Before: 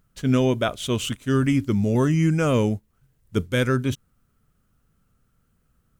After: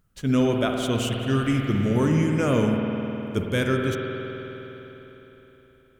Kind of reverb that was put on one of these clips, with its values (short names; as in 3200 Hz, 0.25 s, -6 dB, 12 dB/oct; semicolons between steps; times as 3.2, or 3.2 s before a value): spring tank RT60 3.9 s, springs 51 ms, chirp 70 ms, DRR 1 dB; gain -2.5 dB